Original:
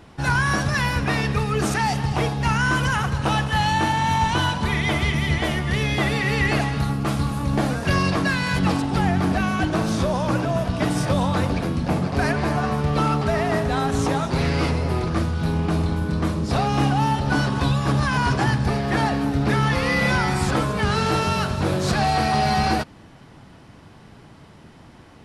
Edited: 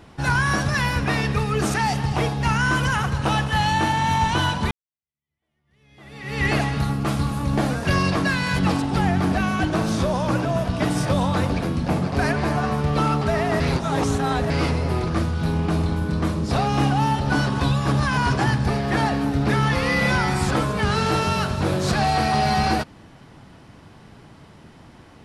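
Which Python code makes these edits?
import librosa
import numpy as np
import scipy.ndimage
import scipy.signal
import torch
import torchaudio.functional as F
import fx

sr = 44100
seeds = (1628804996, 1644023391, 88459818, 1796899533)

y = fx.edit(x, sr, fx.fade_in_span(start_s=4.71, length_s=1.74, curve='exp'),
    fx.reverse_span(start_s=13.6, length_s=0.9), tone=tone)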